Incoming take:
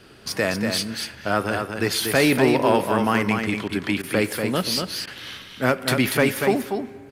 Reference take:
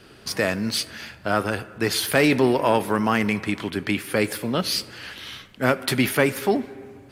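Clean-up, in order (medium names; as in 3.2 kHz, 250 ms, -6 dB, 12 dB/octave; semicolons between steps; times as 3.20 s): clip repair -7 dBFS; interpolate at 3.68/4.02/5.06 s, 11 ms; inverse comb 239 ms -5.5 dB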